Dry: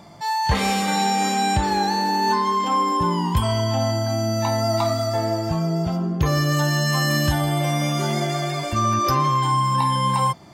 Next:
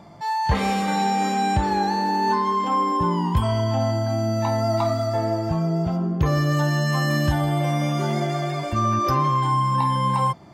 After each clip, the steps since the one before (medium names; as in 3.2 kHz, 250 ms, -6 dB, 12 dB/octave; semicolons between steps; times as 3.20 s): treble shelf 2.8 kHz -9.5 dB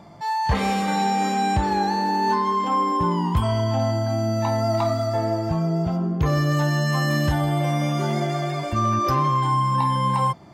overload inside the chain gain 13 dB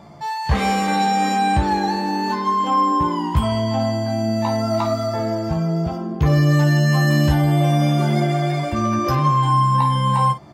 early reflections 14 ms -5 dB, 54 ms -12 dB; trim +1.5 dB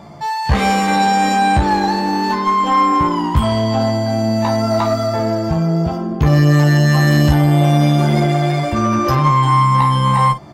single-diode clipper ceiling -13.5 dBFS; trim +5.5 dB